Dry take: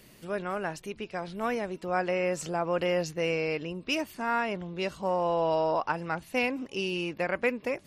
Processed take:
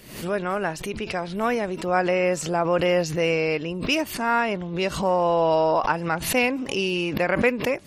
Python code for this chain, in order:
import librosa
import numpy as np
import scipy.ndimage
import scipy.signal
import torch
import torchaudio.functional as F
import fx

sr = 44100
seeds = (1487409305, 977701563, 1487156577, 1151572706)

y = fx.pre_swell(x, sr, db_per_s=85.0)
y = y * 10.0 ** (6.5 / 20.0)